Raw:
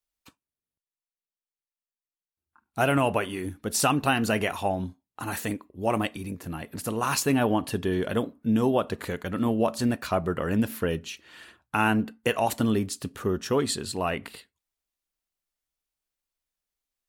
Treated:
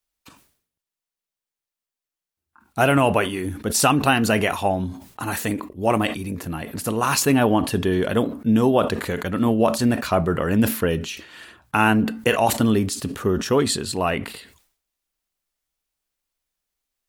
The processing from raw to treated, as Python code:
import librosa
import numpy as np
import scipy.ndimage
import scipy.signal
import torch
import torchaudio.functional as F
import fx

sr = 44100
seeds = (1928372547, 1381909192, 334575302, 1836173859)

y = fx.sustainer(x, sr, db_per_s=100.0)
y = y * librosa.db_to_amplitude(5.5)